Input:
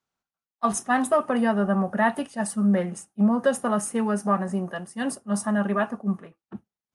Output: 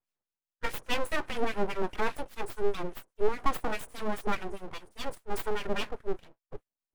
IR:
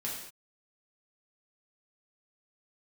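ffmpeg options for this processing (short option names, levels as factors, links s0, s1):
-filter_complex "[0:a]acrossover=split=860[s0][s1];[s0]aeval=exprs='val(0)*(1-1/2+1/2*cos(2*PI*4.9*n/s))':c=same[s2];[s1]aeval=exprs='val(0)*(1-1/2-1/2*cos(2*PI*4.9*n/s))':c=same[s3];[s2][s3]amix=inputs=2:normalize=0,aeval=exprs='abs(val(0))':c=same"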